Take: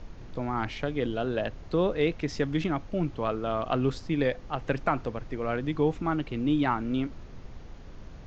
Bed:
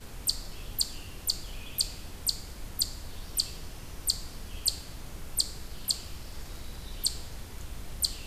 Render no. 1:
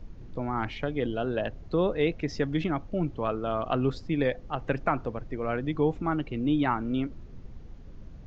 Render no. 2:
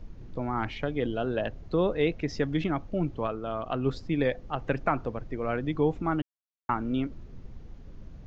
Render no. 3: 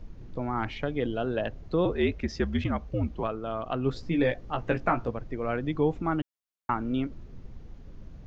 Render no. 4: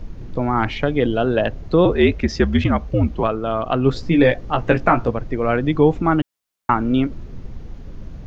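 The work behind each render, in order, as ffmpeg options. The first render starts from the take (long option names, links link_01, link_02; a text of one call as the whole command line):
ffmpeg -i in.wav -af "afftdn=noise_reduction=9:noise_floor=-45" out.wav
ffmpeg -i in.wav -filter_complex "[0:a]asplit=5[link_01][link_02][link_03][link_04][link_05];[link_01]atrim=end=3.272[link_06];[link_02]atrim=start=3.268:end=3.862,asetpts=PTS-STARTPTS,volume=-3.5dB[link_07];[link_03]atrim=start=3.858:end=6.22,asetpts=PTS-STARTPTS,afade=type=out:start_time=2.358:duration=0.004:curve=hsin[link_08];[link_04]atrim=start=6.22:end=6.69,asetpts=PTS-STARTPTS,volume=0[link_09];[link_05]atrim=start=6.69,asetpts=PTS-STARTPTS,afade=type=in:duration=0.004:curve=hsin[link_10];[link_06][link_07]acrossfade=duration=0.004:curve1=hsin:curve2=hsin[link_11];[link_08][link_09][link_10]concat=n=3:v=0:a=1[link_12];[link_11][link_12]acrossfade=duration=0.004:curve1=hsin:curve2=hsin" out.wav
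ffmpeg -i in.wav -filter_complex "[0:a]asettb=1/sr,asplit=3[link_01][link_02][link_03];[link_01]atrim=end=1.854[link_04];[link_02]atrim=start=1.85:end=3.23,asetpts=PTS-STARTPTS,afade=type=in:duration=0.004:curve=qsin,afade=type=out:start_time=1.376:duration=0.004:curve=qsin,afreqshift=-70[link_05];[link_03]atrim=start=3.226[link_06];[link_04][link_05]acrossfade=duration=0.004:curve1=hsin:curve2=qsin[link_07];[link_07][link_06]acrossfade=duration=0.004:curve1=qsin:curve2=hsin,asettb=1/sr,asplit=3[link_08][link_09][link_10];[link_08]atrim=end=3.944[link_11];[link_09]atrim=start=3.94:end=5.11,asetpts=PTS-STARTPTS,afade=type=in:duration=0.004:curve=qsin,afade=type=out:start_time=1.166:duration=0.004:curve=qsin,asplit=2[link_12][link_13];[link_13]adelay=17,volume=-4dB[link_14];[link_12][link_14]amix=inputs=2:normalize=0,atrim=end_sample=51597[link_15];[link_10]atrim=start=5.106[link_16];[link_11][link_15]acrossfade=duration=0.004:curve1=hsin:curve2=qsin[link_17];[link_17][link_16]acrossfade=duration=0.004:curve1=qsin:curve2=hsin" out.wav
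ffmpeg -i in.wav -af "volume=11dB,alimiter=limit=-1dB:level=0:latency=1" out.wav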